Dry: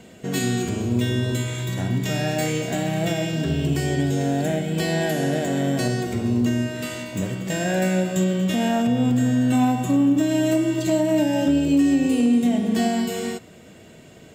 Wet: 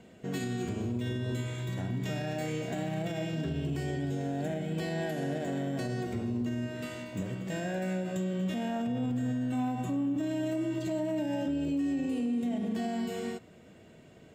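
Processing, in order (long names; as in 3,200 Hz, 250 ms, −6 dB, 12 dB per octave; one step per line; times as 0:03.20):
high-shelf EQ 3,800 Hz −8.5 dB
brickwall limiter −17 dBFS, peak gain reduction 6 dB
level −8 dB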